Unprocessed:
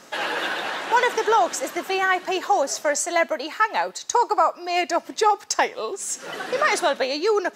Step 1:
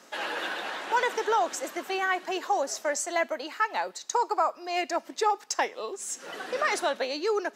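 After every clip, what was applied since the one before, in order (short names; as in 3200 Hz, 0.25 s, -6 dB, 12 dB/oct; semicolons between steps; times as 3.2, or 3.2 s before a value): HPF 180 Hz 24 dB/oct; gain -6.5 dB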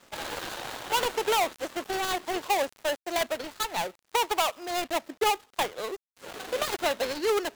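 switching dead time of 0.26 ms; gain +2 dB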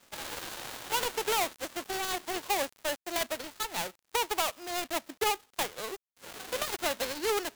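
spectral whitening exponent 0.6; gain -4 dB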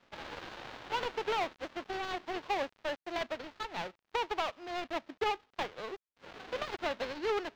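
air absorption 230 m; gain -1.5 dB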